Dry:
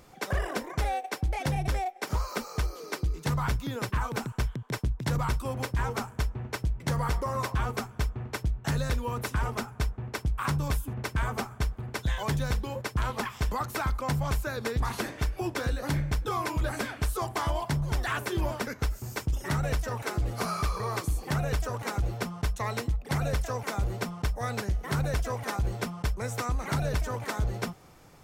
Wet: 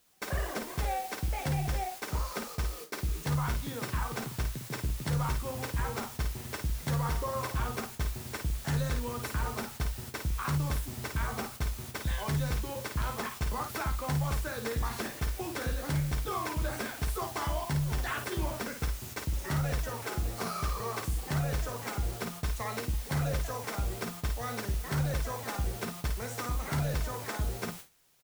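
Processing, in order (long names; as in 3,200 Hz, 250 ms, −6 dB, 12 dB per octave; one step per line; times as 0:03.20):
background noise white −43 dBFS
ambience of single reflections 13 ms −9 dB, 54 ms −6.5 dB
noise gate with hold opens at −25 dBFS
level −5 dB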